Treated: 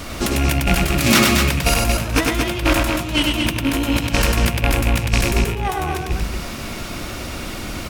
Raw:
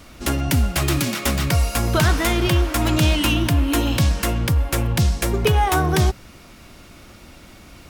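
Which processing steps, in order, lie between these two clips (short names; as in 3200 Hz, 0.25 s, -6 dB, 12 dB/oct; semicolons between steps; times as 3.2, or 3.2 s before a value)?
rattling part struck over -25 dBFS, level -18 dBFS; notches 50/100/150/200/250/300 Hz; negative-ratio compressor -25 dBFS, ratio -0.5; loudspeakers at several distances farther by 34 m -3 dB, 79 m -5 dB; gain +6 dB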